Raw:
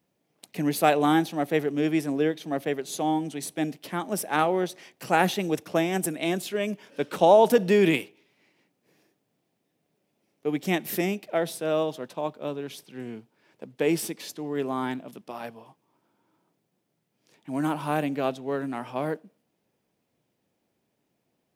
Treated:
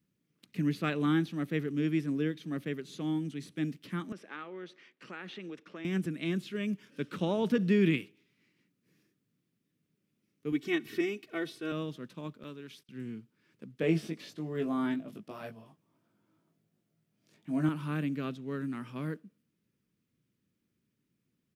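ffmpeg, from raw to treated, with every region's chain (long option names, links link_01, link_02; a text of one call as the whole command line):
ffmpeg -i in.wav -filter_complex "[0:a]asettb=1/sr,asplit=3[link_01][link_02][link_03];[link_01]atrim=end=4.124[link_04];[link_02]atrim=start=4.12:end=5.85,asetpts=PTS-STARTPTS,afade=type=in:duration=0.004:curve=qsin,afade=type=out:start_time=1.726:duration=0.004:curve=qsin,acompressor=threshold=-27dB:ratio=4:attack=3.2:release=140:knee=1:detection=peak,highpass=380,lowpass=3100[link_05];[link_03]atrim=start=5.846[link_06];[link_04][link_05]acrossfade=duration=0.004:curve1=hsin:curve2=qsin[link_07];[link_07][link_06]acrossfade=duration=0.004:curve1=qsin:curve2=hsin,asettb=1/sr,asplit=3[link_08][link_09][link_10];[link_08]atrim=end=10.524[link_11];[link_09]atrim=start=10.52:end=11.72,asetpts=PTS-STARTPTS,afade=type=in:duration=0.004:curve=qsin,afade=type=out:start_time=1.196:duration=0.004:curve=qsin,equalizer=frequency=60:width_type=o:width=1.6:gain=-12.5,aecho=1:1:2.7:0.91,atrim=end_sample=52920[link_12];[link_10]atrim=start=11.716[link_13];[link_11][link_12]acrossfade=duration=0.004:curve1=hsin:curve2=qsin[link_14];[link_14][link_13]acrossfade=duration=0.004:curve1=qsin:curve2=hsin,asettb=1/sr,asplit=3[link_15][link_16][link_17];[link_15]atrim=end=12.434[link_18];[link_16]atrim=start=12.43:end=12.89,asetpts=PTS-STARTPTS,afade=type=in:duration=0.004:curve=qsin,afade=type=out:start_time=0.456:duration=0.004:curve=qsin,lowshelf=frequency=330:gain=-10.5,agate=range=-20dB:threshold=-53dB:ratio=16:release=100:detection=peak[link_19];[link_17]atrim=start=12.886[link_20];[link_18][link_19]acrossfade=duration=0.004:curve1=hsin:curve2=qsin[link_21];[link_21][link_20]acrossfade=duration=0.004:curve1=qsin:curve2=hsin,asettb=1/sr,asplit=3[link_22][link_23][link_24];[link_22]atrim=end=13.814[link_25];[link_23]atrim=start=13.81:end=17.69,asetpts=PTS-STARTPTS,afade=type=in:duration=0.004:curve=qsin,afade=type=out:start_time=3.876:duration=0.004:curve=qsin,equalizer=frequency=670:width_type=o:width=0.56:gain=15,asplit=2[link_26][link_27];[link_27]adelay=19,volume=-4.5dB[link_28];[link_26][link_28]amix=inputs=2:normalize=0,atrim=end_sample=171108[link_29];[link_24]atrim=start=17.686[link_30];[link_25][link_29]acrossfade=duration=0.004:curve1=hsin:curve2=qsin[link_31];[link_31][link_30]acrossfade=duration=0.004:curve1=qsin:curve2=hsin,acrossover=split=4600[link_32][link_33];[link_33]acompressor=threshold=-54dB:ratio=4:attack=1:release=60[link_34];[link_32][link_34]amix=inputs=2:normalize=0,firequalizer=gain_entry='entry(190,0);entry(740,-24);entry(1200,-7)':delay=0.05:min_phase=1" out.wav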